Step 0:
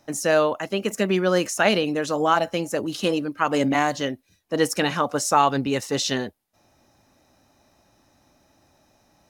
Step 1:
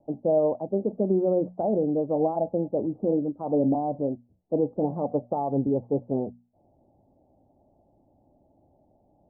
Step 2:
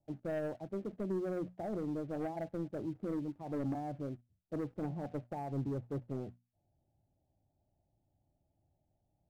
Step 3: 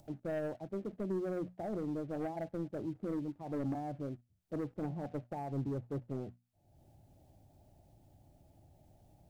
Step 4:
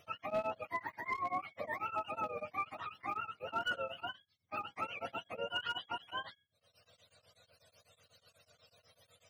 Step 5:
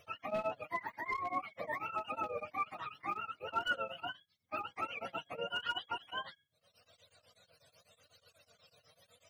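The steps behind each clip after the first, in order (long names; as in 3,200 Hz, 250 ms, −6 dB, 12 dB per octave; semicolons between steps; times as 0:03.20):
brickwall limiter −12.5 dBFS, peak gain reduction 7 dB; Butterworth low-pass 800 Hz 48 dB per octave; mains-hum notches 60/120/180/240 Hz
dynamic equaliser 320 Hz, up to +5 dB, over −37 dBFS, Q 2.2; leveller curve on the samples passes 1; octave-band graphic EQ 125/250/500/1,000 Hz +3/−10/−10/−7 dB; level −8 dB
upward compression, threshold −48 dBFS
frequency axis turned over on the octave scale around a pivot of 630 Hz; gain into a clipping stage and back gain 32.5 dB; tremolo along a rectified sine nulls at 8.1 Hz; level +5 dB
flanger 0.85 Hz, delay 1.7 ms, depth 5.6 ms, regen +38%; level +4.5 dB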